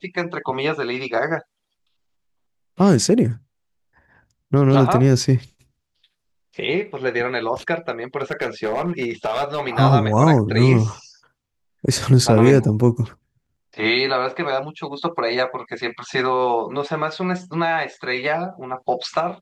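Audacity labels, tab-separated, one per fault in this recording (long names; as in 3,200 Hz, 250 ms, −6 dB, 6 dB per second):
8.210000	9.610000	clipping −17 dBFS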